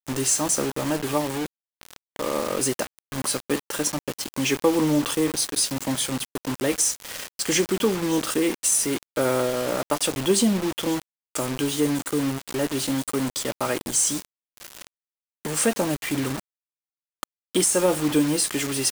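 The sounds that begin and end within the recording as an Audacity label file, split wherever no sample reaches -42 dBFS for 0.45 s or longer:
15.450000	16.400000	sound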